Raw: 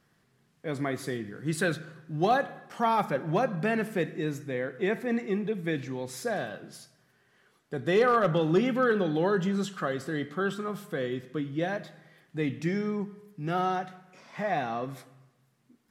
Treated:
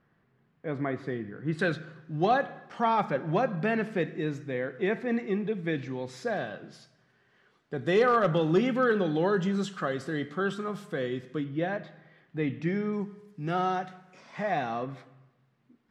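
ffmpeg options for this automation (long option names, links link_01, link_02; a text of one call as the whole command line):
ffmpeg -i in.wav -af "asetnsamples=nb_out_samples=441:pad=0,asendcmd='1.59 lowpass f 4600;7.81 lowpass f 7800;11.44 lowpass f 3100;12.93 lowpass f 7600;14.83 lowpass f 3200',lowpass=2100" out.wav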